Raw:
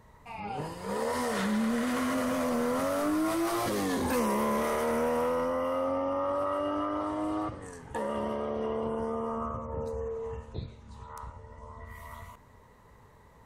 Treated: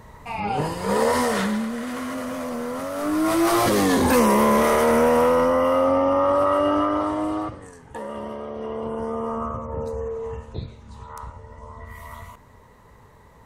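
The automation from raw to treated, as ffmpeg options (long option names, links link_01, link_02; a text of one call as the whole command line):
ffmpeg -i in.wav -af "volume=28.5dB,afade=type=out:start_time=1.05:duration=0.65:silence=0.266073,afade=type=in:start_time=2.93:duration=0.58:silence=0.281838,afade=type=out:start_time=6.72:duration=1.01:silence=0.281838,afade=type=in:start_time=8.54:duration=0.73:silence=0.501187" out.wav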